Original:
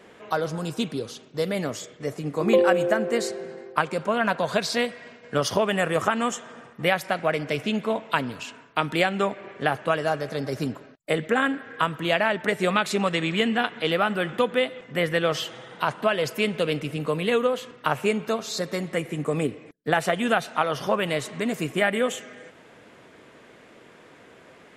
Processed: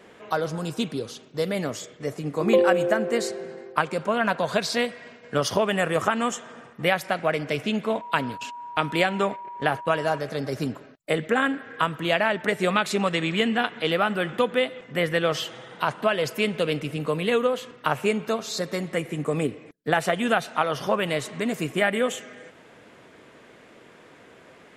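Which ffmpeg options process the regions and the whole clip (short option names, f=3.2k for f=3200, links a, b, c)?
-filter_complex "[0:a]asettb=1/sr,asplit=3[a][b][c];[a]atrim=end=8.014[d];[b]atrim=start=8.01:end=10.18,asetpts=PTS-STARTPTS,afade=t=in:d=0.004:c=qsin,afade=t=out:st=2.166:d=0.004:c=qsin,agate=range=-19dB:threshold=-39dB:ratio=16:release=100:detection=peak,acompressor=mode=upward:threshold=-44dB:ratio=2.5:attack=3.2:release=140:knee=2.83:detection=peak,aeval=exprs='val(0)+0.0178*sin(2*PI*960*n/s)':c=same[e];[c]atrim=start=10.176[f];[d][e]acrossfade=d=0.004:c1=hsin:c2=qsin[g];[g][f]acrossfade=d=0.004:c1=qsin:c2=hsin"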